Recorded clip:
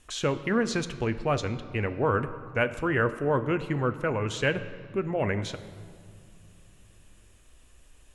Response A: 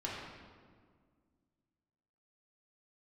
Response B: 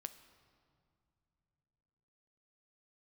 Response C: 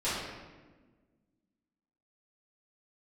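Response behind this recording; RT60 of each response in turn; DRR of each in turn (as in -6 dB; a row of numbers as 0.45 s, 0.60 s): B; 1.8 s, no single decay rate, 1.4 s; -6.0 dB, 10.0 dB, -13.5 dB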